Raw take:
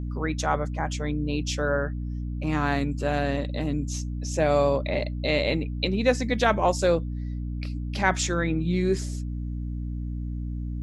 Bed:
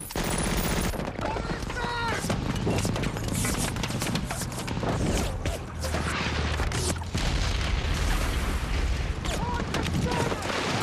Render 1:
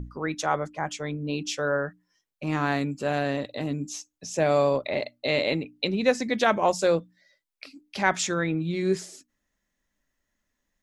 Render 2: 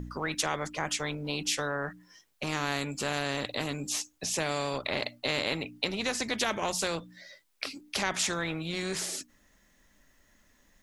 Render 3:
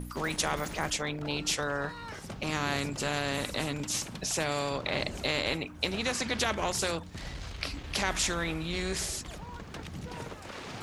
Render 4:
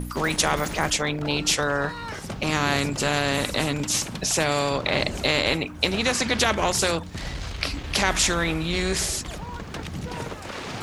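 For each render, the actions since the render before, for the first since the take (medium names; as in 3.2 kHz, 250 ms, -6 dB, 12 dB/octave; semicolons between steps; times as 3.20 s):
hum notches 60/120/180/240/300 Hz
compression 2:1, threshold -27 dBFS, peak gain reduction 7 dB; spectrum-flattening compressor 2:1
add bed -14 dB
trim +8 dB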